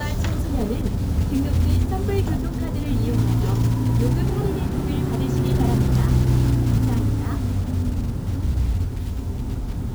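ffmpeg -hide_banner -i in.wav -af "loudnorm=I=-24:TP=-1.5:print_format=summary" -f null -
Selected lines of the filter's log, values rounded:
Input Integrated:    -22.9 LUFS
Input True Peak:      -7.2 dBTP
Input LRA:             4.7 LU
Input Threshold:     -32.9 LUFS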